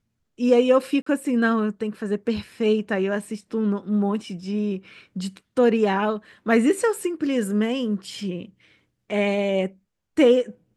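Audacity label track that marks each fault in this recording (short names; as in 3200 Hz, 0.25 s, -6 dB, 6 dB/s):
1.020000	1.060000	gap 44 ms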